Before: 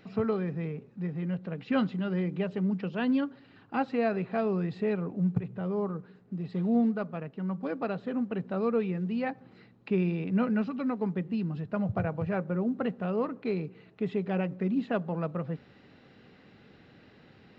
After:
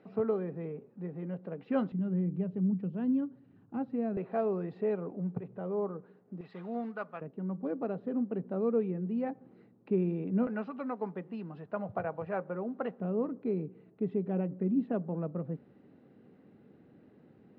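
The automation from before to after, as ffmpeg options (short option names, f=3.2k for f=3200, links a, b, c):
-af "asetnsamples=n=441:p=0,asendcmd='1.92 bandpass f 160;4.17 bandpass f 540;6.41 bandpass f 1300;7.21 bandpass f 340;10.47 bandpass f 800;13 bandpass f 280',bandpass=f=490:t=q:w=0.84:csg=0"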